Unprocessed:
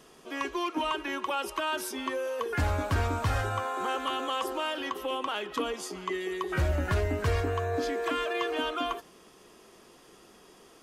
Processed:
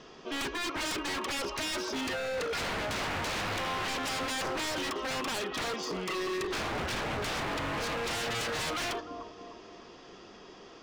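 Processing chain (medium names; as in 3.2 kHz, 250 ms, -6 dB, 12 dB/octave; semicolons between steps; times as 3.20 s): steep low-pass 5.9 kHz 36 dB/octave; feedback comb 96 Hz, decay 0.15 s, harmonics all, mix 30%; bucket-brigade echo 301 ms, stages 2048, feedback 50%, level -15 dB; wavefolder -35 dBFS; trim +6.5 dB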